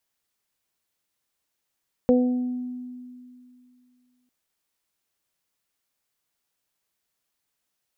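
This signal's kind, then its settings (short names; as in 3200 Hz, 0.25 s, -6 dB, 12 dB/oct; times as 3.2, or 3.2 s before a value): additive tone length 2.20 s, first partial 249 Hz, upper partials 1.5/-17 dB, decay 2.52 s, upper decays 0.58/1.10 s, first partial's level -16 dB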